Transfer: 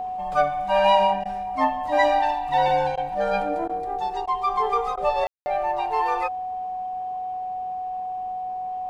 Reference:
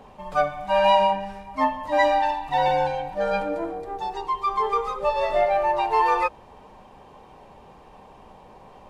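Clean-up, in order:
notch filter 740 Hz, Q 30
ambience match 0:05.27–0:05.46
repair the gap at 0:01.24/0:02.96/0:03.68/0:04.26/0:04.96, 12 ms
level correction +4 dB, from 0:05.24

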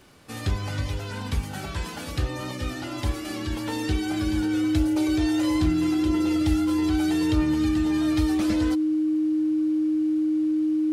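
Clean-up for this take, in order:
click removal
notch filter 310 Hz, Q 30

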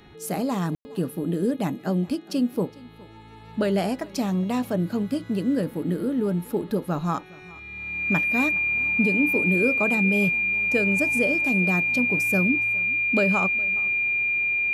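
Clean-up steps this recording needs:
hum removal 416.6 Hz, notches 10
notch filter 2,400 Hz, Q 30
ambience match 0:00.75–0:00.85
echo removal 414 ms −22.5 dB

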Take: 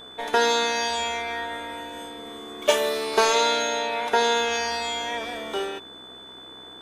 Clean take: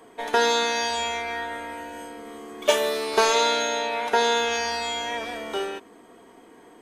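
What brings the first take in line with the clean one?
hum removal 63.9 Hz, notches 26
notch filter 3,500 Hz, Q 30

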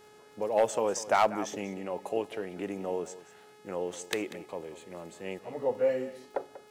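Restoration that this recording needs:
clipped peaks rebuilt −16 dBFS
click removal
hum removal 422.9 Hz, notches 29
echo removal 191 ms −15.5 dB

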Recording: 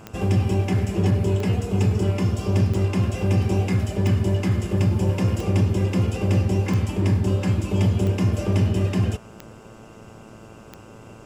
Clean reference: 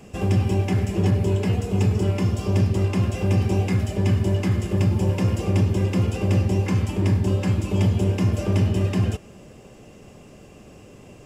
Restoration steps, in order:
click removal
hum removal 111 Hz, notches 14

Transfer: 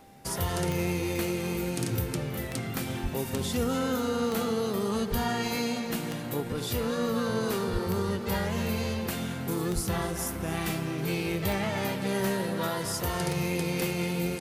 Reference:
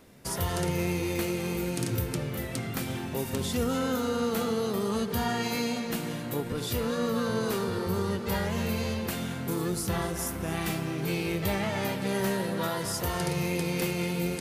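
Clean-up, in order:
click removal
notch filter 790 Hz, Q 30
high-pass at the plosives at 0:03.02/0:05.10/0:07.72/0:09.74
echo removal 323 ms −23 dB

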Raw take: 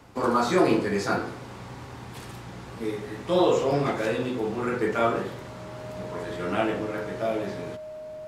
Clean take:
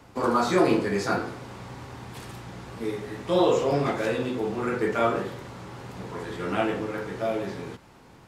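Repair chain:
notch filter 620 Hz, Q 30

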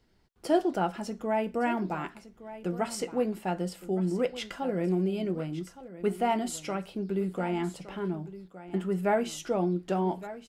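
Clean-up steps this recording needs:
echo removal 1,165 ms −15 dB

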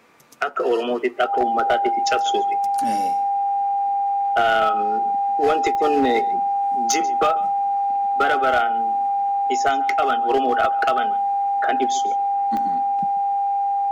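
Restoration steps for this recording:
clipped peaks rebuilt −11.5 dBFS
click removal
notch filter 800 Hz, Q 30
echo removal 140 ms −20.5 dB

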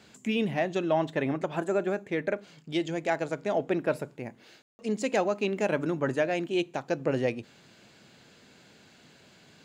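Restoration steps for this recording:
ambience match 0:04.62–0:04.79

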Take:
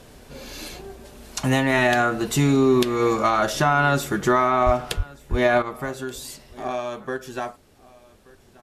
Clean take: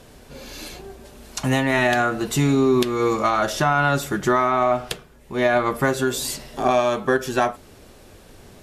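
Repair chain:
0:04.65–0:04.77: high-pass filter 140 Hz 24 dB per octave
0:04.96–0:05.08: high-pass filter 140 Hz 24 dB per octave
0:05.30–0:05.42: high-pass filter 140 Hz 24 dB per octave
echo removal 1,179 ms −23.5 dB
level 0 dB, from 0:05.62 +9.5 dB

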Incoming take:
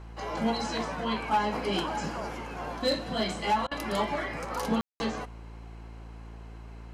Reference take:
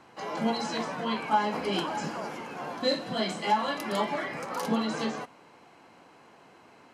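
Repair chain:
clipped peaks rebuilt −19.5 dBFS
hum removal 56 Hz, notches 8
ambience match 0:04.81–0:05.00
repair the gap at 0:03.67, 42 ms

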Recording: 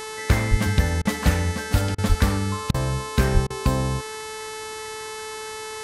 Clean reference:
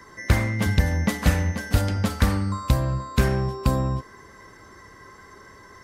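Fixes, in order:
click removal
hum removal 435.7 Hz, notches 26
high-pass at the plosives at 0:00.50/0:02.08/0:03.33
repair the gap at 0:01.02/0:01.95/0:02.71/0:03.47, 31 ms

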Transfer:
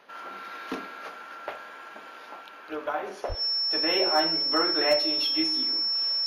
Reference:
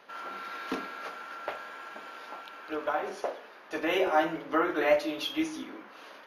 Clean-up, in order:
clipped peaks rebuilt −14 dBFS
notch filter 5,400 Hz, Q 30
0:03.28–0:03.40: high-pass filter 140 Hz 24 dB per octave

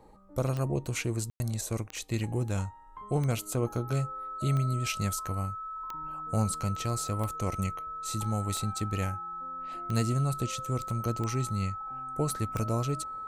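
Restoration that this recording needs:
click removal
notch filter 1,300 Hz, Q 30
ambience match 0:01.30–0:01.40

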